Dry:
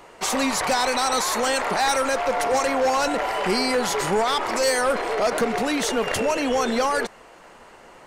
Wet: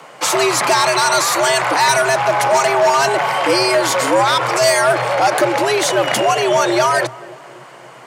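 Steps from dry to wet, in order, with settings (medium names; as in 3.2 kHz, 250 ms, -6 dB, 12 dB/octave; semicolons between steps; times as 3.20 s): filtered feedback delay 267 ms, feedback 60%, low-pass 840 Hz, level -18.5 dB; frequency shift +120 Hz; trim +7.5 dB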